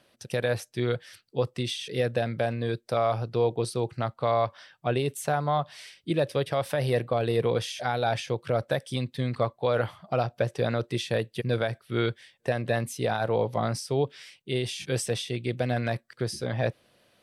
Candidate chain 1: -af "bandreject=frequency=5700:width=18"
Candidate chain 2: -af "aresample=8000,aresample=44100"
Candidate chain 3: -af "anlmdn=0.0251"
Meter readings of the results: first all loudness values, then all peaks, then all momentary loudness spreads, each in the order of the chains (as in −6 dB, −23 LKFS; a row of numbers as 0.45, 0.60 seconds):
−29.0, −29.0, −29.0 LKFS; −14.0, −13.5, −14.0 dBFS; 5, 6, 5 LU